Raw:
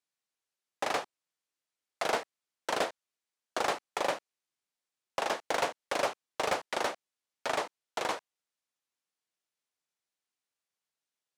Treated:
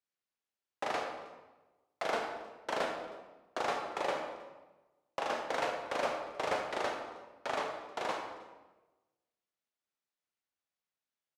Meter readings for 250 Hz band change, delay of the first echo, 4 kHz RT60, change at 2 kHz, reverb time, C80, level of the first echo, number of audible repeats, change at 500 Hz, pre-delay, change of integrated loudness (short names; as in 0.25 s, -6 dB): -1.5 dB, 0.315 s, 0.90 s, -3.0 dB, 1.1 s, 6.0 dB, -22.5 dB, 1, -2.0 dB, 25 ms, -3.0 dB